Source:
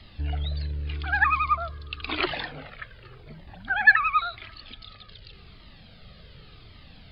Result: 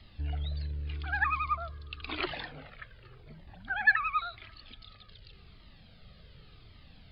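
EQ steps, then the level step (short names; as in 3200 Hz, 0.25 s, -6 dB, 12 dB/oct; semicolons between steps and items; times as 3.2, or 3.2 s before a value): low shelf 160 Hz +3 dB; -7.5 dB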